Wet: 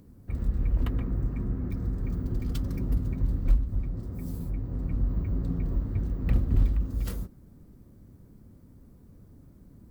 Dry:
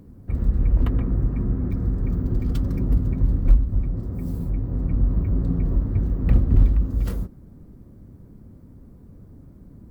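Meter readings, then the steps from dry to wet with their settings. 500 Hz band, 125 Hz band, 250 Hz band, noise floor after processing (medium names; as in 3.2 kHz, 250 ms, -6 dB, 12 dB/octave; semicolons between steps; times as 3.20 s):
-6.5 dB, -7.0 dB, -7.0 dB, -54 dBFS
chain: treble shelf 2.1 kHz +9 dB; trim -7 dB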